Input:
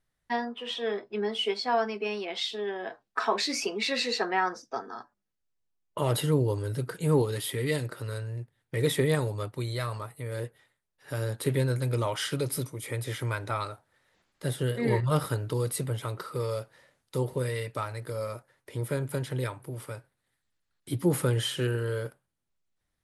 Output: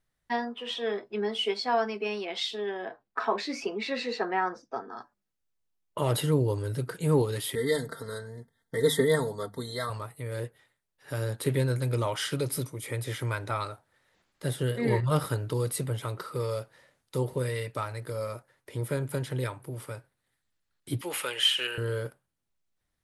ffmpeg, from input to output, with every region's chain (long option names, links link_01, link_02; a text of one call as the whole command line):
ffmpeg -i in.wav -filter_complex "[0:a]asettb=1/sr,asplit=3[link_01][link_02][link_03];[link_01]atrim=end=2.854[link_04];[link_02]atrim=start=2.85:end=4.97,asetpts=PTS-STARTPTS,afade=type=in:duration=0.004:curve=qsin,afade=type=out:start_time=2.116:duration=0.004:curve=qsin,lowpass=frequency=1800:poles=1,bandreject=frequency=50:width_type=h:width=6,bandreject=frequency=100:width_type=h:width=6[link_05];[link_03]atrim=start=4.966[link_06];[link_04][link_05]acrossfade=duration=0.004:curve1=hsin:curve2=qsin[link_07];[link_07][link_06]acrossfade=duration=0.004:curve1=qsin:curve2=hsin,asettb=1/sr,asplit=3[link_08][link_09][link_10];[link_08]atrim=end=7.554[link_11];[link_09]atrim=start=7.55:end=9.9,asetpts=PTS-STARTPTS,afade=type=in:duration=0.004:curve=qsin,afade=type=out:start_time=2.346:duration=0.004:curve=qsin,asuperstop=centerf=2600:order=20:qfactor=2.6,bandreject=frequency=50:width_type=h:width=6,bandreject=frequency=100:width_type=h:width=6,bandreject=frequency=150:width_type=h:width=6,bandreject=frequency=200:width_type=h:width=6,aecho=1:1:4.4:0.67,atrim=end_sample=103635[link_12];[link_10]atrim=start=9.896[link_13];[link_11][link_12]acrossfade=duration=0.004:curve1=hsin:curve2=qsin[link_14];[link_14][link_13]acrossfade=duration=0.004:curve1=qsin:curve2=hsin,asettb=1/sr,asplit=3[link_15][link_16][link_17];[link_15]atrim=end=21.014[link_18];[link_16]atrim=start=21.01:end=21.78,asetpts=PTS-STARTPTS,afade=type=in:duration=0.004:curve=qsin,afade=type=out:start_time=0.766:duration=0.004:curve=qsin,highpass=710,equalizer=frequency=2700:width_type=o:width=0.76:gain=13[link_19];[link_17]atrim=start=21.776[link_20];[link_18][link_19]acrossfade=duration=0.004:curve1=hsin:curve2=qsin[link_21];[link_21][link_20]acrossfade=duration=0.004:curve1=qsin:curve2=hsin" out.wav